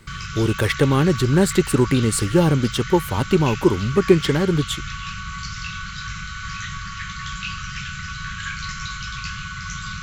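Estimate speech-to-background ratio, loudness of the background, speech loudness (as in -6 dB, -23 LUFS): 11.5 dB, -30.5 LUFS, -19.0 LUFS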